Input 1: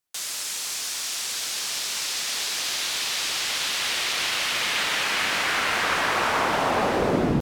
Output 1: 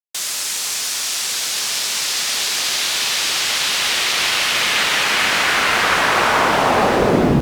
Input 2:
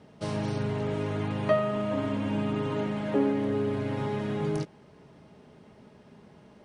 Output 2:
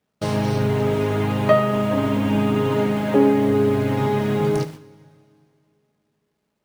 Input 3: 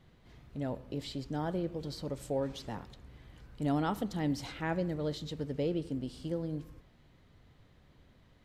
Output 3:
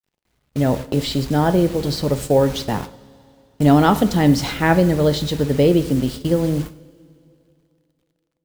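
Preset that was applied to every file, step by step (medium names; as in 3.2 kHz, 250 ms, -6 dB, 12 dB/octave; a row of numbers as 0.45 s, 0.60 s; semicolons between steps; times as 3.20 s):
bit crusher 9-bit; gate -45 dBFS, range -32 dB; two-slope reverb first 0.47 s, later 2.7 s, from -16 dB, DRR 11.5 dB; peak normalisation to -3 dBFS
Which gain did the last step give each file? +7.5 dB, +8.5 dB, +18.0 dB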